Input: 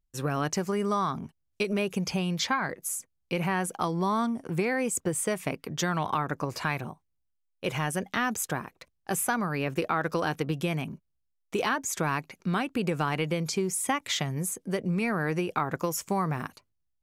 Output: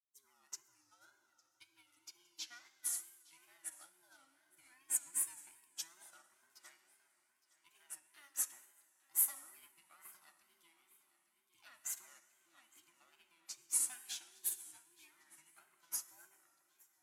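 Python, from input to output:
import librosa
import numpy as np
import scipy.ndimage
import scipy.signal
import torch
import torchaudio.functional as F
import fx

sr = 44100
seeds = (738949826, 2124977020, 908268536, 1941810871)

p1 = fx.band_invert(x, sr, width_hz=500)
p2 = np.diff(p1, prepend=0.0)
p3 = p2 + fx.echo_feedback(p2, sr, ms=862, feedback_pct=57, wet_db=-11.0, dry=0)
p4 = fx.rev_plate(p3, sr, seeds[0], rt60_s=2.9, hf_ratio=0.9, predelay_ms=0, drr_db=2.5)
p5 = fx.wow_flutter(p4, sr, seeds[1], rate_hz=2.1, depth_cents=100.0)
p6 = fx.upward_expand(p5, sr, threshold_db=-43.0, expansion=2.5)
y = p6 * librosa.db_to_amplitude(-2.0)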